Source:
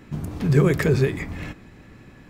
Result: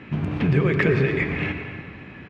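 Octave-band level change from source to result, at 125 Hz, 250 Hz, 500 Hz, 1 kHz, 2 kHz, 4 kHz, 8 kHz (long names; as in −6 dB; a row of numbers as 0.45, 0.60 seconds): −1.0 dB, +0.5 dB, −0.5 dB, +2.0 dB, +6.0 dB, +1.0 dB, below −15 dB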